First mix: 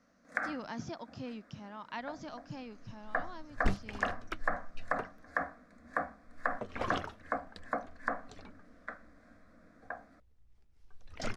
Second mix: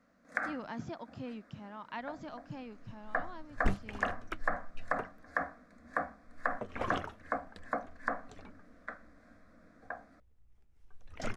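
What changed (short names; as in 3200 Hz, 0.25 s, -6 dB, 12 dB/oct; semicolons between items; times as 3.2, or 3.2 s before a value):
speech: remove synth low-pass 5800 Hz, resonance Q 3.4; second sound: add bell 4600 Hz -7 dB 0.77 oct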